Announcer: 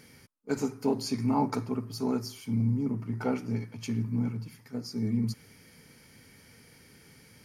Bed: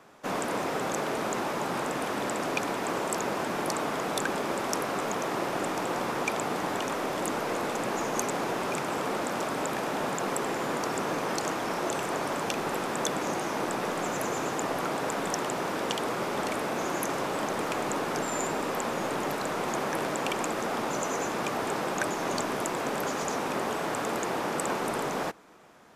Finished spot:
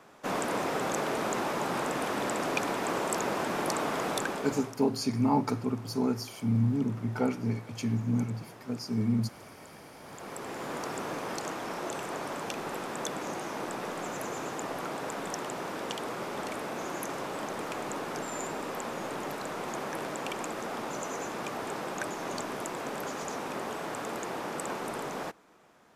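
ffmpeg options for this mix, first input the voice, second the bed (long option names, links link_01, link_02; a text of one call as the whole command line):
ffmpeg -i stem1.wav -i stem2.wav -filter_complex "[0:a]adelay=3950,volume=1dB[link_01];[1:a]volume=14dB,afade=type=out:start_time=4.08:duration=0.68:silence=0.105925,afade=type=in:start_time=10.01:duration=0.77:silence=0.188365[link_02];[link_01][link_02]amix=inputs=2:normalize=0" out.wav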